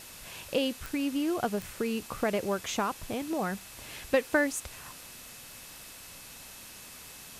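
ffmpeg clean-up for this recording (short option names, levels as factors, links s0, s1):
-af "adeclick=t=4,bandreject=f=2600:w=30,afwtdn=0.005"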